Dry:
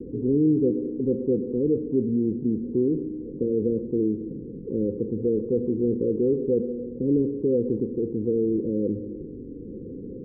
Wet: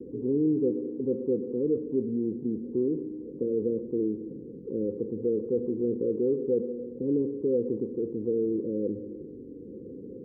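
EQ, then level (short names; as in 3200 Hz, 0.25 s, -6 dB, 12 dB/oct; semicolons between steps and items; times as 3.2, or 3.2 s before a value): HPF 55 Hz; low shelf 270 Hz -10.5 dB; 0.0 dB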